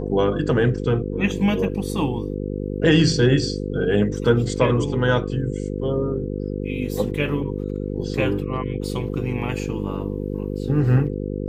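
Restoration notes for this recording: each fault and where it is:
mains buzz 50 Hz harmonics 10 −27 dBFS

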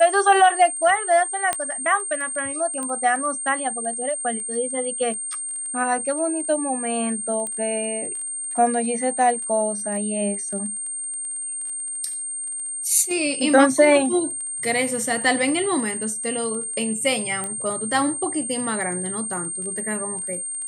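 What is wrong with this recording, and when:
surface crackle 15 per second −31 dBFS
whistle 8,700 Hz −27 dBFS
0:01.53: click −7 dBFS
0:02.83: click −17 dBFS
0:07.47: click −17 dBFS
0:17.44: click −15 dBFS

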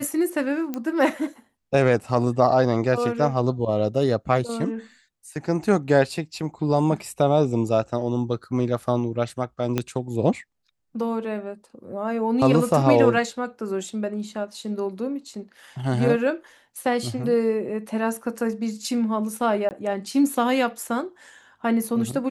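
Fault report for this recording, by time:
0:00.74: click −15 dBFS
0:09.78: click −9 dBFS
0:19.69–0:19.71: drop-out 19 ms

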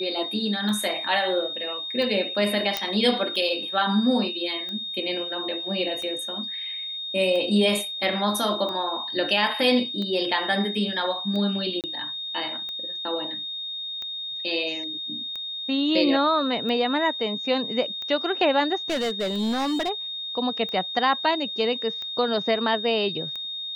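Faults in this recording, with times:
scratch tick 45 rpm −22 dBFS
whistle 3,700 Hz −30 dBFS
0:02.77: click −8 dBFS
0:11.81–0:11.84: drop-out 28 ms
0:18.90–0:19.90: clipping −22 dBFS

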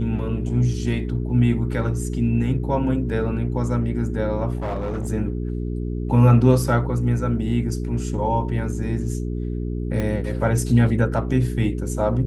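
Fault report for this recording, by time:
mains hum 60 Hz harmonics 7 −26 dBFS
0:04.57–0:05.08: clipping −22 dBFS
0:10.00: click −13 dBFS

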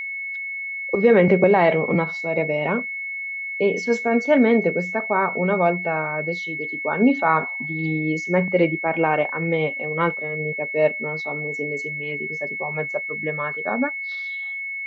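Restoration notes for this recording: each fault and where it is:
whistle 2,200 Hz −27 dBFS

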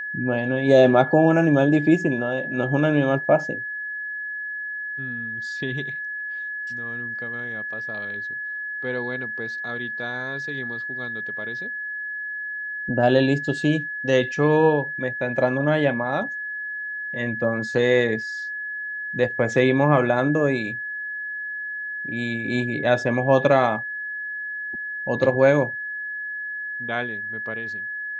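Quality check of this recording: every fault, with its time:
whistle 1,700 Hz −28 dBFS

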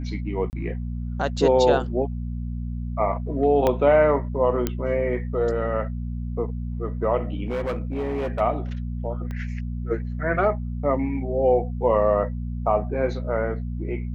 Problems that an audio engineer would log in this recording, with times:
mains hum 60 Hz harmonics 4 −29 dBFS
0:00.50–0:00.53: drop-out 29 ms
0:03.67: click −9 dBFS
0:04.67: click −9 dBFS
0:07.46–0:08.41: clipping −22.5 dBFS
0:09.31: click −22 dBFS

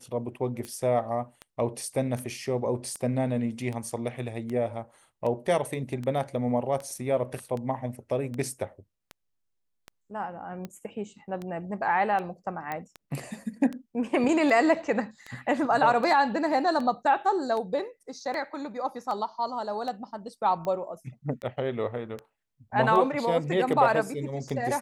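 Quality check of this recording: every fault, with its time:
scratch tick 78 rpm −23 dBFS
0:12.72: click −19 dBFS

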